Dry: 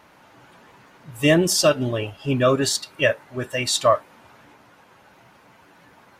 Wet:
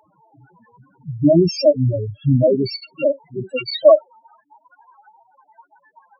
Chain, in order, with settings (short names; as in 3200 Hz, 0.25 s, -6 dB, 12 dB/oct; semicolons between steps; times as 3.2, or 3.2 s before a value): loudest bins only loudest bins 2; harmoniser -12 st -15 dB; high-pass sweep 130 Hz -> 880 Hz, 3.29–4.18; gain +6.5 dB